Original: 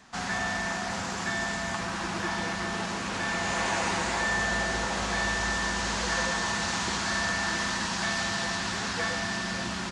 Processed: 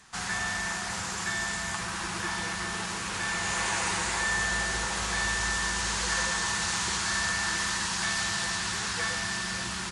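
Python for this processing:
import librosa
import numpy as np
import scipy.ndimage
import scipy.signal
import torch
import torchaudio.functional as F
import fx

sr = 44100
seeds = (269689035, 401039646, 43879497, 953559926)

y = fx.graphic_eq_15(x, sr, hz=(250, 630, 10000), db=(-10, -8, 12))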